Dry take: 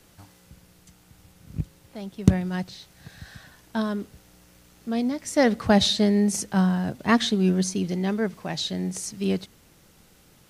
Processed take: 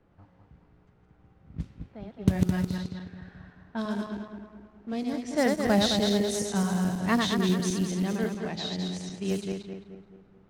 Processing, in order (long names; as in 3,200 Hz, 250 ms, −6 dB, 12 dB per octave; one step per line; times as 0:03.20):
feedback delay that plays each chunk backwards 107 ms, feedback 69%, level −3.5 dB
log-companded quantiser 6 bits
low-pass that shuts in the quiet parts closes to 1,200 Hz, open at −18.5 dBFS
level −6 dB